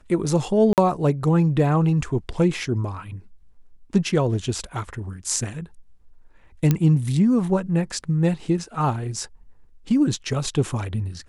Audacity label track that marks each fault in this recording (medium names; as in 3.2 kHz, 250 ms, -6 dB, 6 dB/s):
0.730000	0.780000	dropout 48 ms
6.710000	6.710000	pop -6 dBFS